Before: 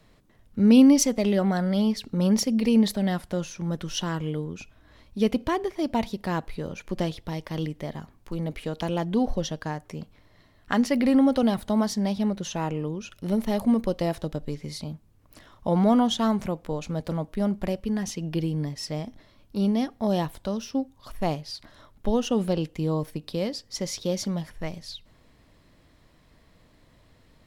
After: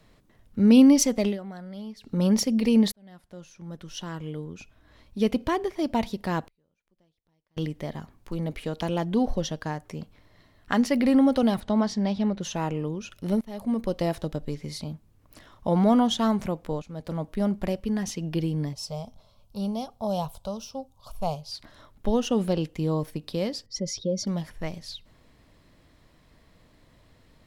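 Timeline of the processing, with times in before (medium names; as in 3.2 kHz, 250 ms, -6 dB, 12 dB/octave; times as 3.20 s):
1.25–2.13 s: dip -15 dB, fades 0.13 s
2.92–5.45 s: fade in
6.47–7.57 s: inverted gate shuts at -32 dBFS, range -40 dB
11.60–12.41 s: low-pass 5.1 kHz
13.41–14.00 s: fade in, from -22.5 dB
16.82–17.28 s: fade in, from -15 dB
18.73–21.52 s: static phaser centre 760 Hz, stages 4
23.66–24.27 s: spectral contrast enhancement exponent 1.7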